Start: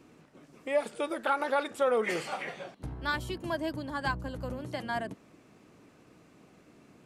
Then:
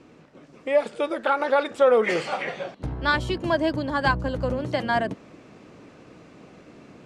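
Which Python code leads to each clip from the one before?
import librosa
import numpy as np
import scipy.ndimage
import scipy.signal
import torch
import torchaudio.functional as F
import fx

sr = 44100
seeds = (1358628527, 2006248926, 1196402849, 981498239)

y = scipy.signal.sosfilt(scipy.signal.butter(2, 6000.0, 'lowpass', fs=sr, output='sos'), x)
y = fx.peak_eq(y, sr, hz=530.0, db=3.5, octaves=0.41)
y = fx.rider(y, sr, range_db=3, speed_s=2.0)
y = y * 10.0 ** (7.0 / 20.0)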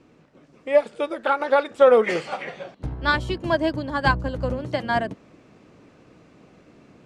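y = fx.low_shelf(x, sr, hz=120.0, db=4.5)
y = fx.upward_expand(y, sr, threshold_db=-31.0, expansion=1.5)
y = y * 10.0 ** (4.0 / 20.0)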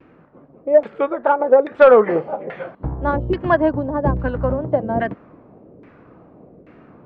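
y = fx.vibrato(x, sr, rate_hz=1.8, depth_cents=77.0)
y = fx.filter_lfo_lowpass(y, sr, shape='saw_down', hz=1.2, low_hz=440.0, high_hz=2100.0, q=1.5)
y = 10.0 ** (-5.5 / 20.0) * np.tanh(y / 10.0 ** (-5.5 / 20.0))
y = y * 10.0 ** (5.0 / 20.0)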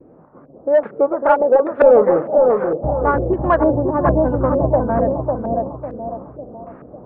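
y = 10.0 ** (-12.0 / 20.0) * np.tanh(x / 10.0 ** (-12.0 / 20.0))
y = fx.echo_bbd(y, sr, ms=550, stages=4096, feedback_pct=41, wet_db=-3.0)
y = fx.filter_lfo_lowpass(y, sr, shape='saw_up', hz=2.2, low_hz=490.0, high_hz=1600.0, q=1.8)
y = y * 10.0 ** (1.5 / 20.0)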